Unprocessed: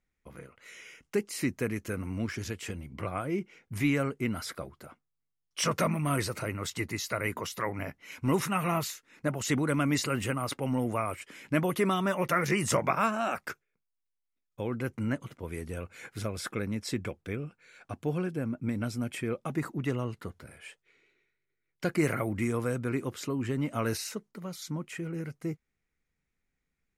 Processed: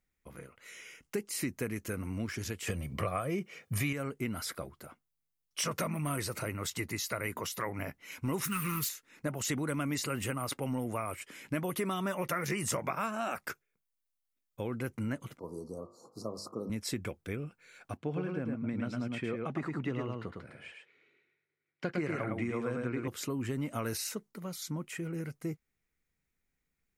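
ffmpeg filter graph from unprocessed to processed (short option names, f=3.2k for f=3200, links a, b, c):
-filter_complex "[0:a]asettb=1/sr,asplit=3[a][b][c];[a]atrim=end=2.674[d];[b]atrim=start=2.67:end=3.93,asetpts=PTS-STARTPTS,afade=t=in:d=0.004:c=qsin,afade=t=out:st=1.256:d=0.004:c=qsin,highpass=85,aecho=1:1:1.7:0.48,atrim=end_sample=55566,acontrast=89[e];[c]atrim=start=3.926[f];[d][e]acrossfade=d=0.004:c1=hsin:c2=qsin[g];[g][f]acrossfade=d=0.004:c1=qsin:c2=hsin,asettb=1/sr,asplit=3[h][i][j];[h]atrim=end=8.444[k];[i]atrim=start=8.44:end=8.89,asetpts=PTS-STARTPTS,afade=t=in:d=0.004:c=qsin,afade=t=out:st=0.446:d=0.004:c=qsin,aeval=exprs='val(0)+0.5*0.00944*sgn(val(0))':c=same,asuperstop=centerf=670:order=4:qfactor=0.8,highshelf=f=8.6k:g=7.5[l];[j]atrim=start=8.886[m];[k][l]acrossfade=d=0.004:c1=hsin:c2=qsin[n];[n][m]acrossfade=d=0.004:c1=qsin:c2=hsin,asettb=1/sr,asplit=3[o][p][q];[o]atrim=end=15.394[r];[p]atrim=start=15.39:end=16.7,asetpts=PTS-STARTPTS,afade=t=in:d=0.004:c=qsin,afade=t=out:st=1.306:d=0.004:c=qsin,asuperstop=centerf=2300:order=20:qfactor=0.76,acrossover=split=150 5600:gain=0.112 1 0.158[s][t][u];[s][t][u]amix=inputs=3:normalize=0,bandreject=f=50.23:t=h:w=4,bandreject=f=100.46:t=h:w=4,bandreject=f=150.69:t=h:w=4,bandreject=f=200.92:t=h:w=4,bandreject=f=251.15:t=h:w=4,bandreject=f=301.38:t=h:w=4,bandreject=f=351.61:t=h:w=4,bandreject=f=401.84:t=h:w=4,bandreject=f=452.07:t=h:w=4,bandreject=f=502.3:t=h:w=4,bandreject=f=552.53:t=h:w=4,bandreject=f=602.76:t=h:w=4,bandreject=f=652.99:t=h:w=4,bandreject=f=703.22:t=h:w=4,bandreject=f=753.45:t=h:w=4,bandreject=f=803.68:t=h:w=4,bandreject=f=853.91:t=h:w=4,bandreject=f=904.14:t=h:w=4,bandreject=f=954.37:t=h:w=4,bandreject=f=1.0046k:t=h:w=4,bandreject=f=1.05483k:t=h:w=4,bandreject=f=1.10506k:t=h:w=4,bandreject=f=1.15529k:t=h:w=4,bandreject=f=1.20552k:t=h:w=4,bandreject=f=1.25575k:t=h:w=4,bandreject=f=1.30598k:t=h:w=4,bandreject=f=1.35621k:t=h:w=4,bandreject=f=1.40644k:t=h:w=4,bandreject=f=1.45667k:t=h:w=4,bandreject=f=1.5069k:t=h:w=4,bandreject=f=1.55713k:t=h:w=4,bandreject=f=1.60736k:t=h:w=4,bandreject=f=1.65759k:t=h:w=4,bandreject=f=1.70782k:t=h:w=4,bandreject=f=1.75805k:t=h:w=4,bandreject=f=1.80828k:t=h:w=4[v];[q]atrim=start=16.696[w];[r][v]acrossfade=d=0.004:c1=hsin:c2=qsin[x];[x][w]acrossfade=d=0.004:c1=qsin:c2=hsin,asettb=1/sr,asplit=3[y][z][aa];[y]atrim=end=17.974[ab];[z]atrim=start=17.97:end=23.08,asetpts=PTS-STARTPTS,afade=t=in:d=0.004:c=qsin,afade=t=out:st=5.106:d=0.004:c=qsin,highpass=110,lowpass=3.5k,aecho=1:1:108:0.631,atrim=end_sample=225351[ac];[aa]atrim=start=23.076[ad];[ab][ac]acrossfade=d=0.004:c1=hsin:c2=qsin[ae];[ae][ad]acrossfade=d=0.004:c1=qsin:c2=hsin,highshelf=f=9.3k:g=8.5,acompressor=threshold=-29dB:ratio=4,volume=-1.5dB"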